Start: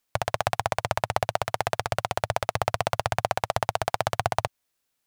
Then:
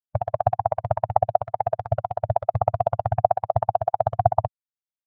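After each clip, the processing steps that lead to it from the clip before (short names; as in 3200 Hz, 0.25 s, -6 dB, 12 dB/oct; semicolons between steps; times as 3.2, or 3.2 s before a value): spectral expander 2.5:1; gain +3 dB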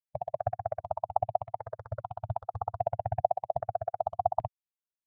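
step phaser 2.5 Hz 370–1900 Hz; gain -7.5 dB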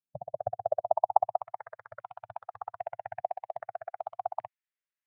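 band-pass sweep 220 Hz -> 1900 Hz, 0.05–1.7; gain +8.5 dB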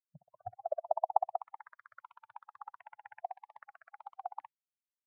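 spectral noise reduction 24 dB; gain -5.5 dB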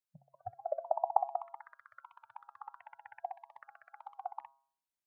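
de-hum 136.2 Hz, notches 12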